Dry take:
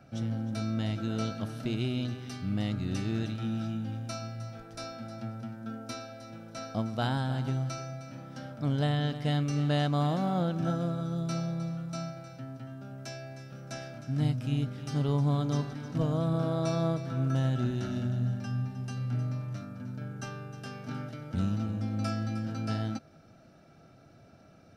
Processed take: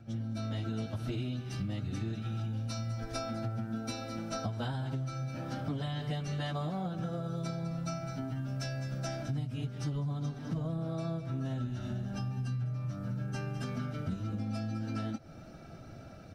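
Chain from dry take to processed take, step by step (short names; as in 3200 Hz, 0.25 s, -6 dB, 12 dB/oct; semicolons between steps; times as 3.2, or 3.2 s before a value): low shelf 74 Hz +10.5 dB; plain phase-vocoder stretch 0.66×; AGC gain up to 13 dB; reverse echo 0.129 s -22 dB; compressor 10:1, threshold -29 dBFS, peak gain reduction 18.5 dB; gain -3.5 dB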